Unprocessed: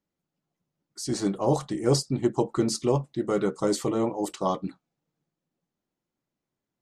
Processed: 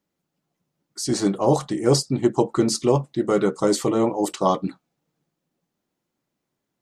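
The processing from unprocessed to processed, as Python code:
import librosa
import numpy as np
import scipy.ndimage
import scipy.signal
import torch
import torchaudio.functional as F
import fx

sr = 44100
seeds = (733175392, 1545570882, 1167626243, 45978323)

p1 = fx.low_shelf(x, sr, hz=70.0, db=-8.5)
p2 = fx.rider(p1, sr, range_db=10, speed_s=0.5)
y = p1 + (p2 * librosa.db_to_amplitude(-0.5))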